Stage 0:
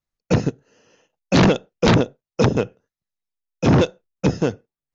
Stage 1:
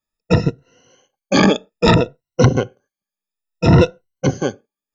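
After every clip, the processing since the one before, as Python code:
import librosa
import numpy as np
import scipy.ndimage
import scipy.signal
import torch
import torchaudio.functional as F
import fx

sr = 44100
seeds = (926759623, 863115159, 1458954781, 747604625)

y = fx.spec_ripple(x, sr, per_octave=2.0, drift_hz=0.61, depth_db=20)
y = y * librosa.db_to_amplitude(-1.0)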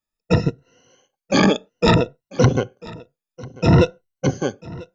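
y = x + 10.0 ** (-21.0 / 20.0) * np.pad(x, (int(993 * sr / 1000.0), 0))[:len(x)]
y = y * librosa.db_to_amplitude(-2.5)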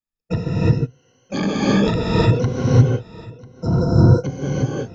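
y = fx.spec_repair(x, sr, seeds[0], start_s=3.53, length_s=0.44, low_hz=1600.0, high_hz=3900.0, source='both')
y = fx.low_shelf(y, sr, hz=270.0, db=7.5)
y = fx.rev_gated(y, sr, seeds[1], gate_ms=380, shape='rising', drr_db=-7.0)
y = y * librosa.db_to_amplitude(-11.0)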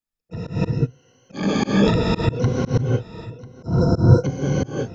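y = fx.auto_swell(x, sr, attack_ms=178.0)
y = y * librosa.db_to_amplitude(1.5)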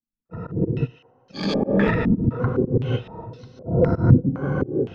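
y = fx.tracing_dist(x, sr, depth_ms=0.093)
y = fx.echo_thinned(y, sr, ms=115, feedback_pct=79, hz=740.0, wet_db=-18.5)
y = fx.filter_held_lowpass(y, sr, hz=3.9, low_hz=250.0, high_hz=4500.0)
y = y * librosa.db_to_amplitude(-3.5)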